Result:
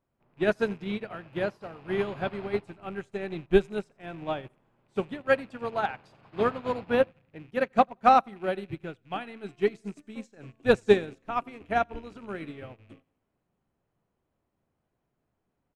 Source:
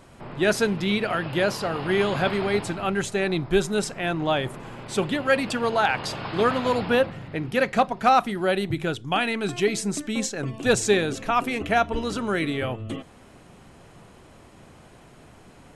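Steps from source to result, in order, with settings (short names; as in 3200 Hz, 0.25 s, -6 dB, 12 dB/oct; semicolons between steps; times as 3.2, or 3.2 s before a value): rattling part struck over -36 dBFS, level -26 dBFS; high shelf 2500 Hz -10.5 dB; feedback echo 88 ms, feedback 54%, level -17.5 dB; upward expander 2.5:1, over -37 dBFS; gain +3 dB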